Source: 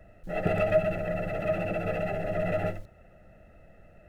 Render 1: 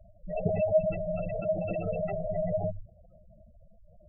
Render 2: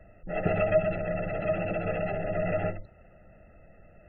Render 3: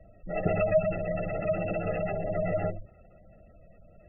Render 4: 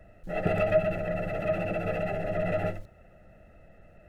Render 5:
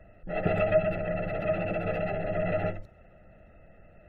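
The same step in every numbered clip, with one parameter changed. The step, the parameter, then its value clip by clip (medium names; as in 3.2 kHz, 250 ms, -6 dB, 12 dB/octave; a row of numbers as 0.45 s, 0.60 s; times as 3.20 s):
spectral gate, under each frame's peak: -10 dB, -35 dB, -20 dB, -60 dB, -45 dB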